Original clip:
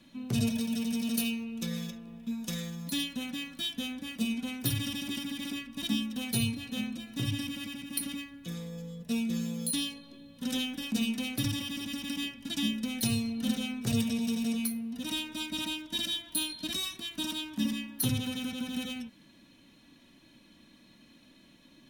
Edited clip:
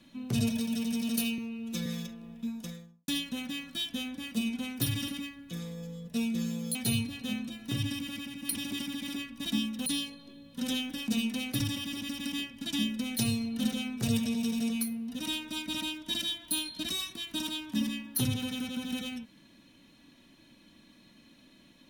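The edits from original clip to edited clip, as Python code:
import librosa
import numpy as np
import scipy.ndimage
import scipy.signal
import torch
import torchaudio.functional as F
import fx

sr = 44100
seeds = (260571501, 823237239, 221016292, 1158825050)

y = fx.studio_fade_out(x, sr, start_s=2.21, length_s=0.71)
y = fx.edit(y, sr, fx.stretch_span(start_s=1.38, length_s=0.32, factor=1.5),
    fx.swap(start_s=4.92, length_s=1.31, other_s=8.03, other_length_s=1.67), tone=tone)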